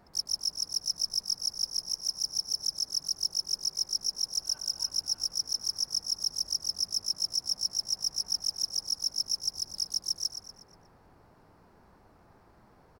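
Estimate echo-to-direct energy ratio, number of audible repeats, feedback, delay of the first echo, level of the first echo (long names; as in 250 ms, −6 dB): −8.5 dB, 4, 45%, 120 ms, −9.5 dB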